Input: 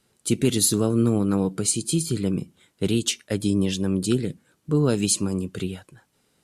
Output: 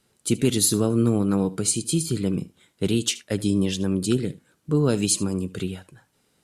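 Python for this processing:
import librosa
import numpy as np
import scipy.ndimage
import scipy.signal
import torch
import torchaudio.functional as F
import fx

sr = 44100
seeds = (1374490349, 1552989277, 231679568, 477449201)

y = x + 10.0 ** (-19.0 / 20.0) * np.pad(x, (int(76 * sr / 1000.0), 0))[:len(x)]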